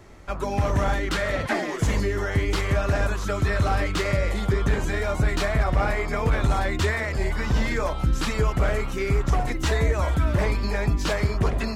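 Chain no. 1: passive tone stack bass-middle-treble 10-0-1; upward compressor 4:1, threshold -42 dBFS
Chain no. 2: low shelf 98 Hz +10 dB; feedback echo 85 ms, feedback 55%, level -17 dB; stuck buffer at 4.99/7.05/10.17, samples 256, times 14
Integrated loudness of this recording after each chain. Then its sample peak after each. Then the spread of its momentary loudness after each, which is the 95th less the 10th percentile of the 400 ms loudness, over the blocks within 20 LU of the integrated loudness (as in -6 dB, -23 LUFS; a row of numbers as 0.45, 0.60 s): -35.5, -20.0 LUFS; -20.0, -4.5 dBFS; 5, 4 LU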